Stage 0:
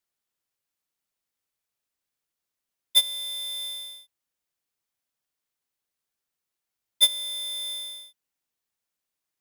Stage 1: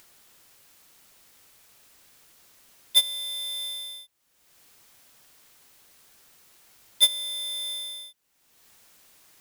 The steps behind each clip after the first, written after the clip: upward compressor, threshold -34 dBFS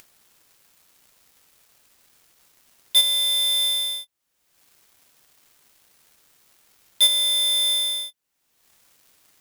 sample leveller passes 3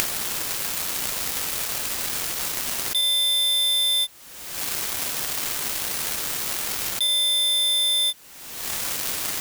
fast leveller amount 100%; gain -8 dB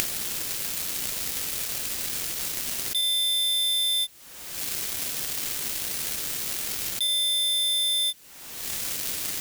dynamic EQ 990 Hz, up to -7 dB, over -46 dBFS, Q 0.82; gain -2.5 dB

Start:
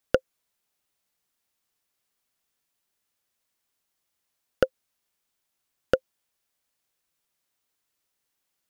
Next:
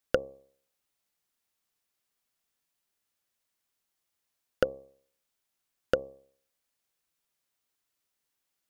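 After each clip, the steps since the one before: de-hum 67.56 Hz, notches 17; gain -3 dB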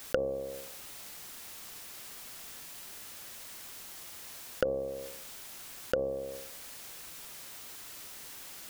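fast leveller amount 70%; gain -4 dB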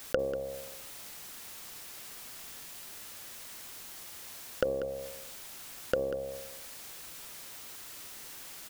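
echo 0.191 s -11.5 dB

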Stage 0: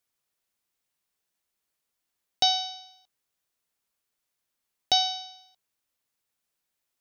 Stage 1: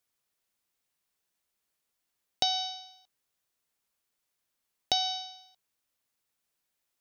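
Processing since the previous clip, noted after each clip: compressor 5:1, threshold -24 dBFS, peak gain reduction 6.5 dB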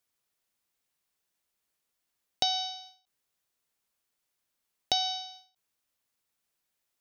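ending taper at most 160 dB/s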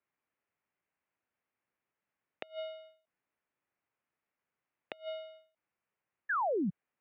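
painted sound fall, 6.29–6.7, 270–1900 Hz -31 dBFS; mistuned SSB -110 Hz 200–2600 Hz; flipped gate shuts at -25 dBFS, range -27 dB

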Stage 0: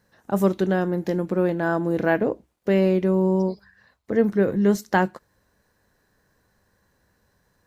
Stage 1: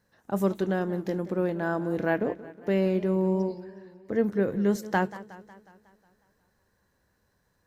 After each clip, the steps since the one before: warbling echo 0.182 s, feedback 57%, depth 118 cents, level -17 dB; gain -5.5 dB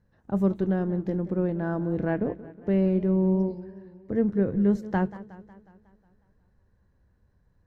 RIAA curve playback; gain -4.5 dB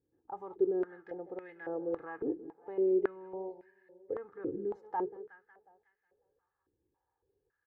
limiter -17.5 dBFS, peak gain reduction 6.5 dB; comb 2.4 ms, depth 81%; stepped band-pass 3.6 Hz 310–2000 Hz

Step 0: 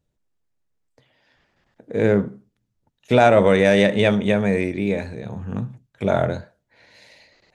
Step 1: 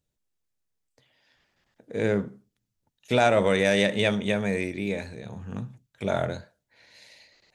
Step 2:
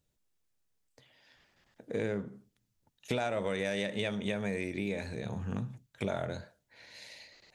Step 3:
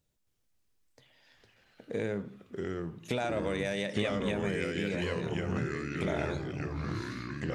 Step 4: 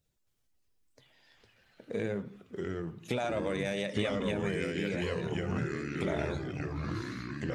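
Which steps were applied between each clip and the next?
high shelf 2500 Hz +9.5 dB; gain -7.5 dB
compressor 5:1, threshold -33 dBFS, peak gain reduction 15.5 dB; gain +2 dB
echoes that change speed 0.271 s, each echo -3 st, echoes 3
bin magnitudes rounded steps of 15 dB

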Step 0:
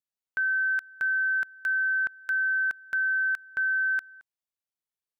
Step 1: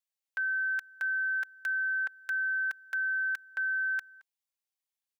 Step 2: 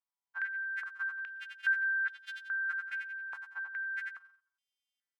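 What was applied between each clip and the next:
HPF 760 Hz; bell 1300 Hz -6 dB; comb 3.7 ms
frequency quantiser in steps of 2 st; feedback echo 89 ms, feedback 32%, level -4 dB; stepped band-pass 2.4 Hz 960–3400 Hz; gain +5.5 dB

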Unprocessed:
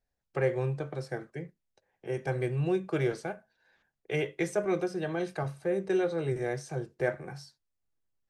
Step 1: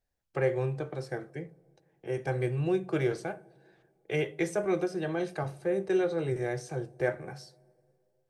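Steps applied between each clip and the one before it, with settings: on a send at -10.5 dB: band shelf 2900 Hz -13.5 dB 2.8 oct + reverb, pre-delay 3 ms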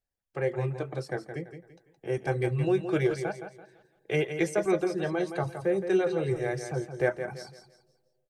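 reverb removal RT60 0.69 s; AGC gain up to 9 dB; on a send: feedback echo 0.168 s, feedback 33%, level -9 dB; on the sum: gain -6 dB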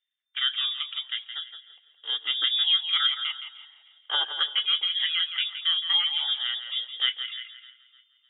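inverted band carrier 3600 Hz; thinning echo 0.304 s, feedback 49%, high-pass 850 Hz, level -22 dB; LFO high-pass saw down 0.41 Hz 370–1900 Hz

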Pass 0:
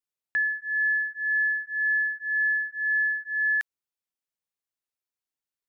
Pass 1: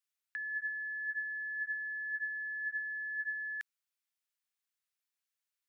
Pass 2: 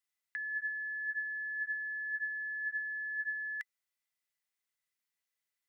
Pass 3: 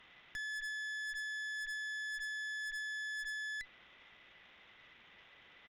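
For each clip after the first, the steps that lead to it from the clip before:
limiter -25.5 dBFS, peak gain reduction 5.5 dB; negative-ratio compressor -35 dBFS, ratio -1; Chebyshev high-pass 1500 Hz, order 2; gain -3 dB
small resonant body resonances 2000 Hz, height 14 dB
zero-crossing step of -45 dBFS; downsampling 8000 Hz; tube stage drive 42 dB, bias 0.75; gain +2.5 dB

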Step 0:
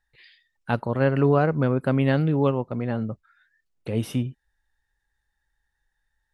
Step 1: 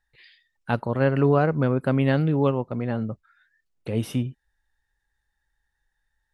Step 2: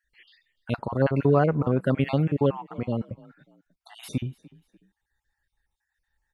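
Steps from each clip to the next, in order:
nothing audible
random spectral dropouts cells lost 39%; frequency-shifting echo 0.295 s, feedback 33%, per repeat +31 Hz, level -22.5 dB

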